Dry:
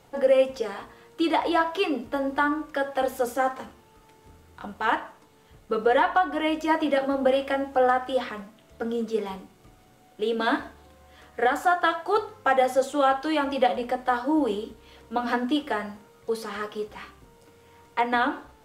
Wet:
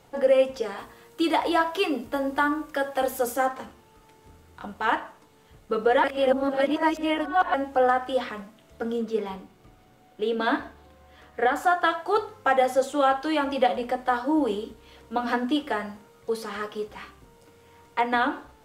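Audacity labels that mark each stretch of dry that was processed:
0.780000	3.460000	high-shelf EQ 8,000 Hz +9.5 dB
6.040000	7.540000	reverse
8.980000	11.570000	parametric band 9,100 Hz −5.5 dB 1.7 octaves

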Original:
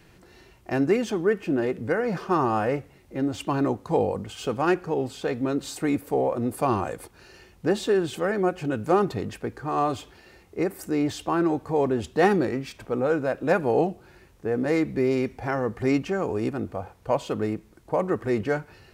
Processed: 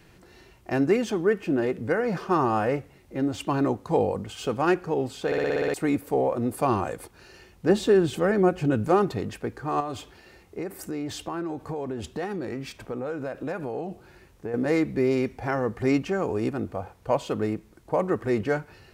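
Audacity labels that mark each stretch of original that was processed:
5.260000	5.260000	stutter in place 0.06 s, 8 plays
7.690000	8.880000	low-shelf EQ 340 Hz +7 dB
9.800000	14.540000	downward compressor, threshold −28 dBFS

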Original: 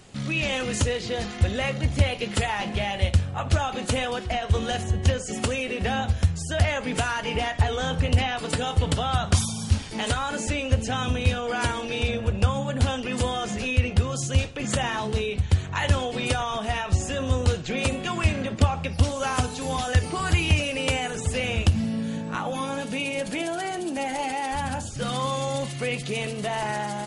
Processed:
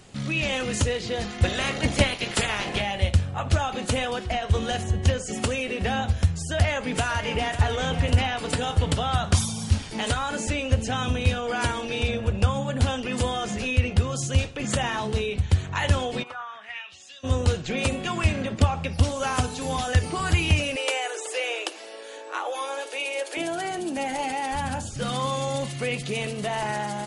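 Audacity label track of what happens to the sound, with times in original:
1.430000	2.800000	ceiling on every frequency bin ceiling under each frame's peak by 16 dB
6.550000	7.600000	delay throw 550 ms, feedback 55%, level −10.5 dB
16.220000	17.230000	resonant band-pass 970 Hz → 5,000 Hz, Q 3.6
20.760000	23.370000	Butterworth high-pass 330 Hz 72 dB per octave

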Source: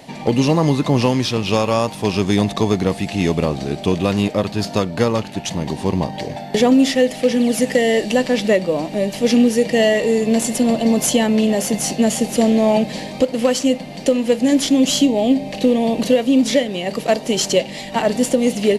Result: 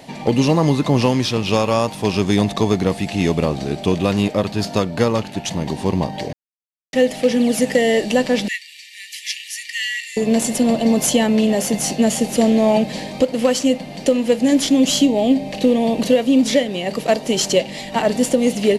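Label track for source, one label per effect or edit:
6.330000	6.930000	silence
8.480000	10.170000	linear-phase brick-wall high-pass 1,700 Hz

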